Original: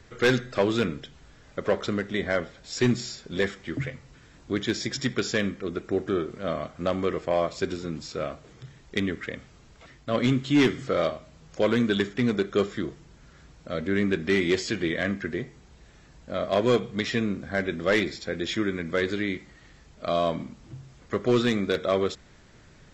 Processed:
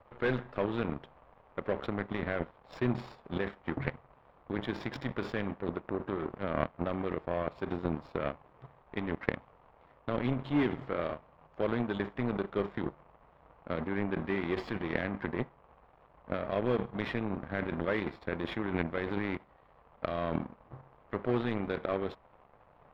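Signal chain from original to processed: in parallel at +1 dB: negative-ratio compressor -31 dBFS, ratio -0.5; on the sum: band noise 440–1200 Hz -37 dBFS; power-law curve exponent 2; air absorption 480 m; gain +1.5 dB

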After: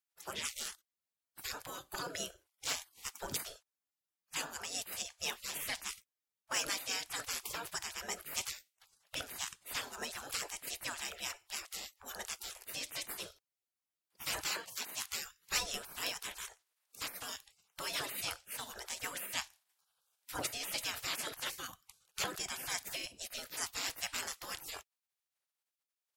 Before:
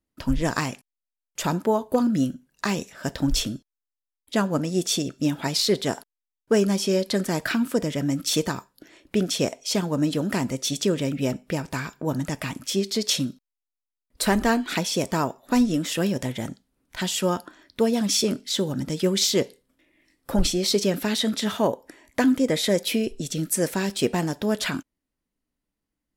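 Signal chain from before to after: bin magnitudes rounded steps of 15 dB; 14.22–15.26 HPF 150 Hz 12 dB/oct; spectral gate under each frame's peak -25 dB weak; gain +1 dB

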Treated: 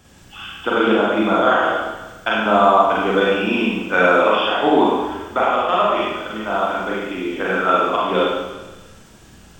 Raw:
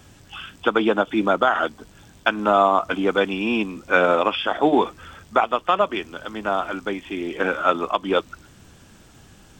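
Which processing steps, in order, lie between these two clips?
Schroeder reverb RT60 1.2 s, combs from 33 ms, DRR -6 dB; gain -3 dB

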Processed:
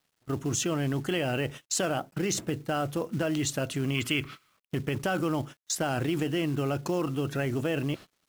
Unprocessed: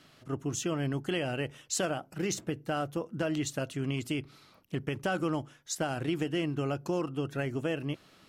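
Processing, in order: spectral gain 3.95–4.7, 990–3500 Hz +9 dB; gate -45 dBFS, range -24 dB; in parallel at -1 dB: negative-ratio compressor -37 dBFS, ratio -1; on the sum: companded quantiser 6-bit

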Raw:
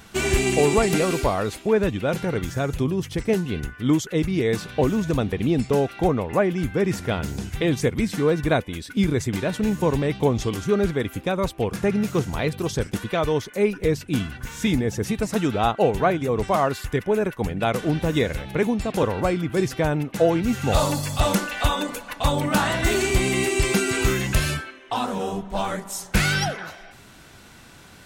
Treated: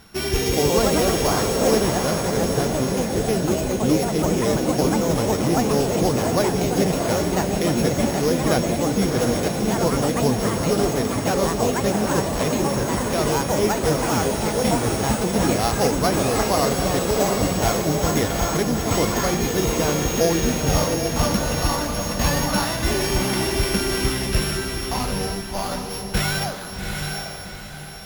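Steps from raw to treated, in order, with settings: sample sorter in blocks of 8 samples; echoes that change speed 0.21 s, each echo +3 st, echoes 3; diffused feedback echo 0.753 s, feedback 43%, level -4 dB; gain -2 dB

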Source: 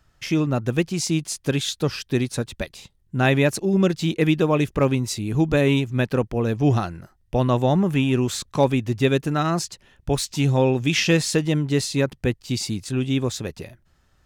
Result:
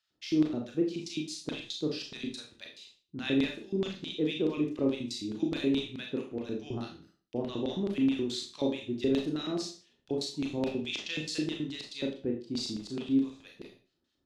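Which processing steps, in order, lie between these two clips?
LFO band-pass square 4.7 Hz 320–3900 Hz; Schroeder reverb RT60 0.37 s, combs from 26 ms, DRR 0.5 dB; gain -5.5 dB

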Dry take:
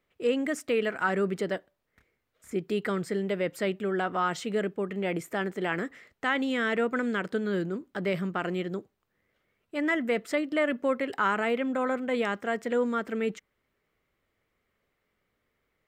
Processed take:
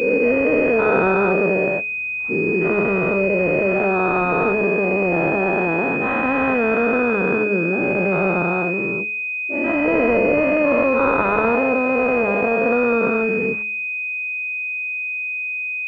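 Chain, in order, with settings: spectral dilation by 0.48 s; de-hum 210.8 Hz, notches 3; pulse-width modulation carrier 2500 Hz; gain +4.5 dB

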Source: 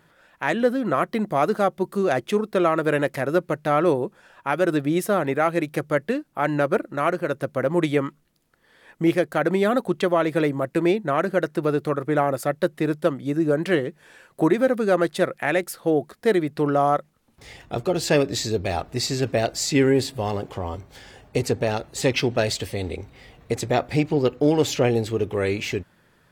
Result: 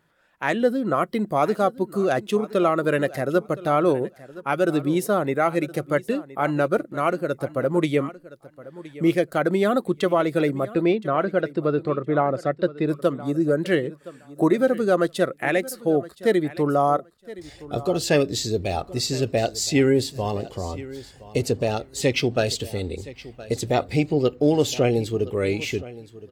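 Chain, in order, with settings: 10.68–12.89 LPF 4200 Hz 12 dB/oct; spectral noise reduction 8 dB; feedback echo 1.018 s, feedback 16%, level -18 dB

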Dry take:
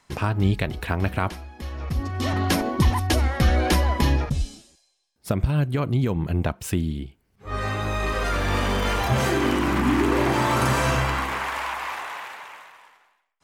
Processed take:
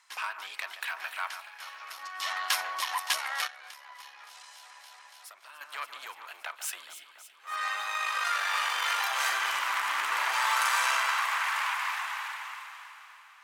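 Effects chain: tube stage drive 15 dB, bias 0.55; HPF 1000 Hz 24 dB/oct; echo with dull and thin repeats by turns 0.142 s, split 2400 Hz, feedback 80%, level -10.5 dB; 3.47–5.61 compressor 6:1, threshold -49 dBFS, peak gain reduction 22 dB; gain +2 dB

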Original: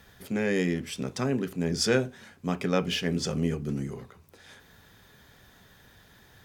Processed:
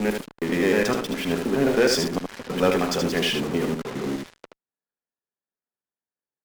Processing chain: slices in reverse order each 0.104 s, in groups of 4; HPF 280 Hz 12 dB/oct; high shelf 4600 Hz -10 dB; low-pass opened by the level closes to 1200 Hz, open at -28 dBFS; in parallel at -8.5 dB: fuzz box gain 52 dB, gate -51 dBFS; on the sum: added harmonics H 4 -21 dB, 7 -17 dB, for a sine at -9.5 dBFS; on a send: echo 76 ms -5.5 dB

